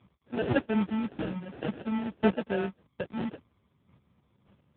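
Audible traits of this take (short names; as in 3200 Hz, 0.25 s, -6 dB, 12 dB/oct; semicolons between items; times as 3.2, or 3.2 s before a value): phasing stages 2, 0.5 Hz, lowest notch 430–2100 Hz; chopped level 1.8 Hz, depth 60%, duty 15%; aliases and images of a low sample rate 1100 Hz, jitter 0%; AMR-NB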